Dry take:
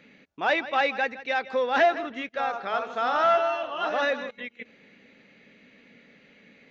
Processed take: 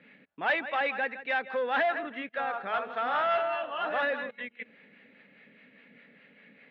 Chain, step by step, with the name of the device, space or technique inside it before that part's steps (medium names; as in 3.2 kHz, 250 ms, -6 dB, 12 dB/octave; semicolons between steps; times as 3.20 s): guitar amplifier with harmonic tremolo (harmonic tremolo 4.9 Hz, depth 50%, crossover 530 Hz; saturation -22.5 dBFS, distortion -14 dB; cabinet simulation 99–3400 Hz, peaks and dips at 100 Hz -9 dB, 350 Hz -5 dB, 1.7 kHz +5 dB)